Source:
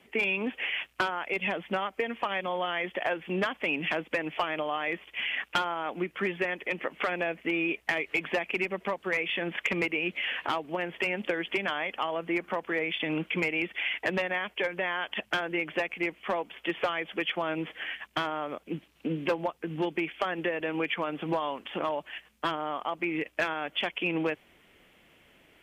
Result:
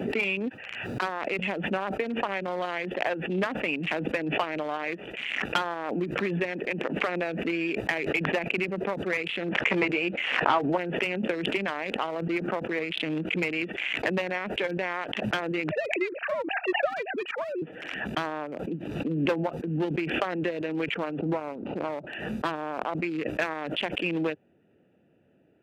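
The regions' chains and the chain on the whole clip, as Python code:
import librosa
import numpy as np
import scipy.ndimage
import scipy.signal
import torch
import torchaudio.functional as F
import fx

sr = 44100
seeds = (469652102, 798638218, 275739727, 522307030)

y = fx.highpass(x, sr, hz=1200.0, slope=12, at=(0.48, 1.01), fade=0.02)
y = fx.high_shelf(y, sr, hz=2200.0, db=-12.0, at=(0.48, 1.01), fade=0.02)
y = fx.dmg_noise_colour(y, sr, seeds[0], colour='pink', level_db=-69.0, at=(0.48, 1.01), fade=0.02)
y = fx.chain(y, sr, fx.lowpass(hz=4700.0, slope=12),
    fx.peak_eq(hz=920.0, db=6.0, octaves=1.7),
    fx.doubler(ms=15.0, db=-9.0), at=(9.48, 10.78))
y = fx.chain(y, sr, fx.sine_speech(),
    fx.lowpass(hz=2700.0, slope=24), at=(15.71, 17.62))
y = fx.chain(y, sr, fx.median_filter(points=25),
    fx.lowpass(hz=2800.0, slope=12),
    fx.notch(hz=1700.0, q=7.6), at=(21.19, 22.07))
y = fx.wiener(y, sr, points=41)
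y = scipy.signal.sosfilt(scipy.signal.butter(4, 97.0, 'highpass', fs=sr, output='sos'), y)
y = fx.pre_swell(y, sr, db_per_s=37.0)
y = y * 10.0 ** (2.0 / 20.0)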